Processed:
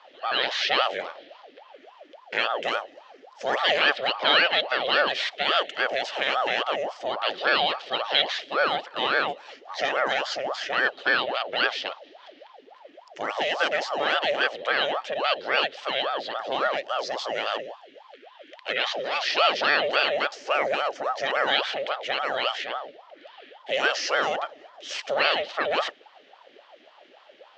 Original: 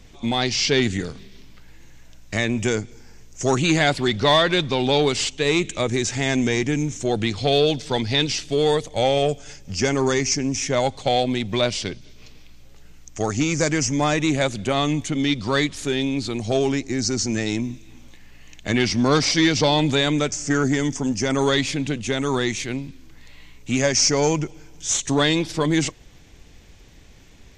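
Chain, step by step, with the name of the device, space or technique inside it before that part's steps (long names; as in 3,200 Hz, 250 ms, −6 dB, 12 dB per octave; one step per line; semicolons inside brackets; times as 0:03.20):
0:17.58–0:19.30: flat-topped bell 580 Hz −12.5 dB 2.6 octaves
voice changer toy (ring modulator whose carrier an LFO sweeps 650 Hz, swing 60%, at 3.6 Hz; loudspeaker in its box 530–4,100 Hz, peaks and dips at 570 Hz +5 dB, 990 Hz −9 dB, 1,800 Hz +6 dB, 3,100 Hz +6 dB)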